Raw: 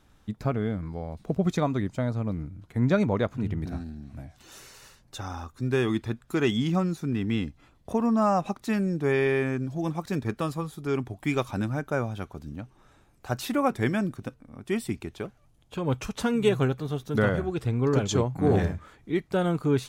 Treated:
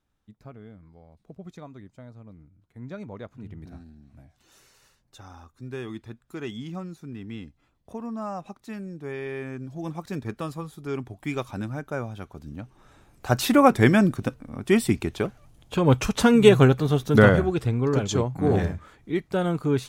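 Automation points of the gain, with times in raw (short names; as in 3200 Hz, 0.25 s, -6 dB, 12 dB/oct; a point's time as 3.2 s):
2.68 s -17 dB
3.68 s -10 dB
9.21 s -10 dB
9.94 s -3 dB
12.23 s -3 dB
13.43 s +8.5 dB
17.27 s +8.5 dB
17.85 s +0.5 dB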